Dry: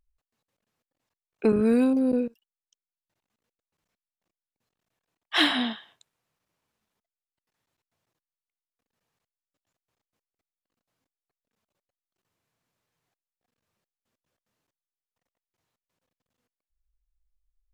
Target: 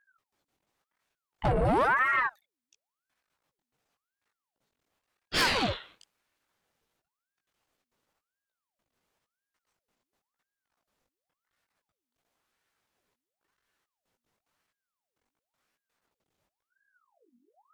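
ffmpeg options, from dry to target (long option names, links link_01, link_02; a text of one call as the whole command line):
ffmpeg -i in.wav -af "flanger=delay=15.5:depth=7.1:speed=2.6,aeval=exprs='(tanh(22.4*val(0)+0.2)-tanh(0.2))/22.4':channel_layout=same,aeval=exprs='val(0)*sin(2*PI*940*n/s+940*0.75/0.95*sin(2*PI*0.95*n/s))':channel_layout=same,volume=8dB" out.wav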